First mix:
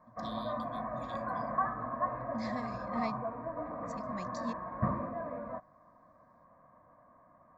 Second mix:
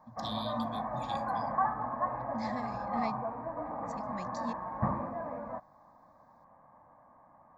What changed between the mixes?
first voice +9.0 dB
background: remove Butterworth band-reject 840 Hz, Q 4.1

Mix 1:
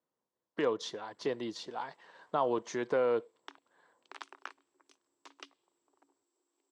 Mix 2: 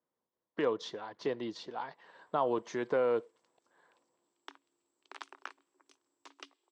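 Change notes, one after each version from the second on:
speech: add high-frequency loss of the air 86 metres
background: entry +1.00 s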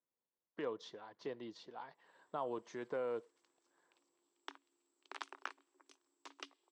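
speech −10.0 dB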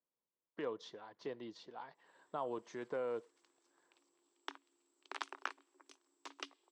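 background +3.5 dB

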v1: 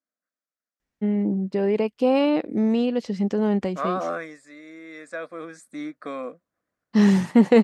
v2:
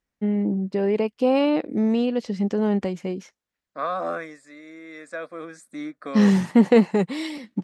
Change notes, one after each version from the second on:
first voice: entry −0.80 s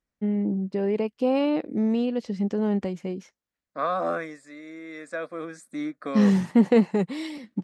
first voice −5.0 dB
master: add low-shelf EQ 400 Hz +3.5 dB

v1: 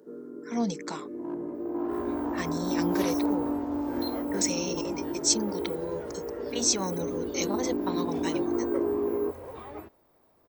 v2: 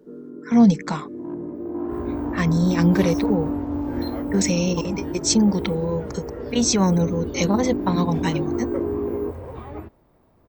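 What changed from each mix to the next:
speech +9.0 dB
second sound +3.5 dB
master: add bass and treble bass +11 dB, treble −8 dB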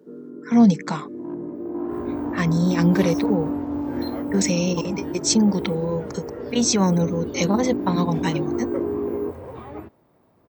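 master: add high-pass filter 110 Hz 12 dB per octave

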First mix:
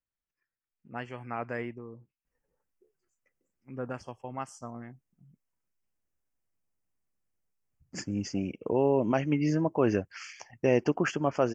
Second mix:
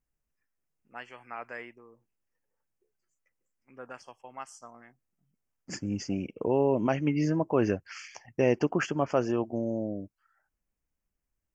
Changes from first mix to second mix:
first voice: add high-pass filter 1,100 Hz 6 dB per octave
second voice: entry −2.25 s

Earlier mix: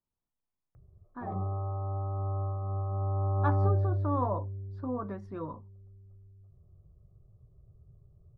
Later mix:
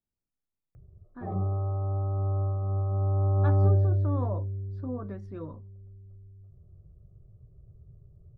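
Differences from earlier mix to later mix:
background +5.0 dB
master: add parametric band 1,000 Hz −9.5 dB 0.9 octaves

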